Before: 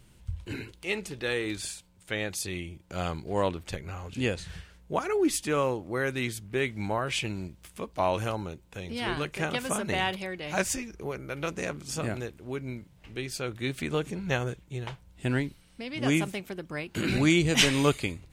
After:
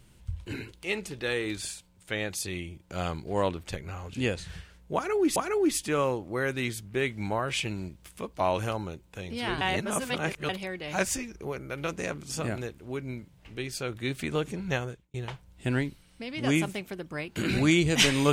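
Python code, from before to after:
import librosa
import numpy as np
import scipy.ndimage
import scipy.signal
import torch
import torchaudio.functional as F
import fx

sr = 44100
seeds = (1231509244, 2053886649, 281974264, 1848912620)

y = fx.edit(x, sr, fx.repeat(start_s=4.95, length_s=0.41, count=2),
    fx.reverse_span(start_s=9.2, length_s=0.88),
    fx.fade_out_span(start_s=14.28, length_s=0.45), tone=tone)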